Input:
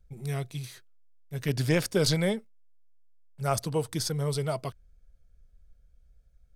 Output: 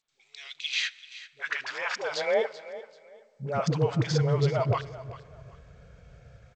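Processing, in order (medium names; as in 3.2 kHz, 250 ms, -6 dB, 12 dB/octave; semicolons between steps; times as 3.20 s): high-order bell 1.1 kHz +8 dB 3 oct; level rider gain up to 12 dB; peak limiter -13 dBFS, peak gain reduction 12 dB; reverse; compression 8:1, threshold -31 dBFS, peak gain reduction 13.5 dB; reverse; phase dispersion highs, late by 93 ms, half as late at 420 Hz; high-pass sweep 3.7 kHz -> 110 Hz, 0.51–4.08 s; distance through air 76 m; feedback delay 386 ms, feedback 25%, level -16 dB; on a send at -21 dB: reverberation RT60 2.8 s, pre-delay 47 ms; on the sum: trim +6.5 dB; G.722 64 kbps 16 kHz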